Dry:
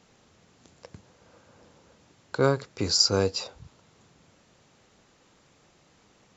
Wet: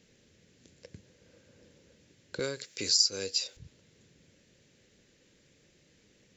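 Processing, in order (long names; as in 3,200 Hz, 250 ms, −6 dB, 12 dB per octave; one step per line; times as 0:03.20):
0:02.39–0:03.57: spectral tilt +4 dB per octave
downward compressor 2 to 1, threshold −27 dBFS, peak gain reduction 11.5 dB
flat-topped bell 960 Hz −14 dB 1.2 octaves
level −2.5 dB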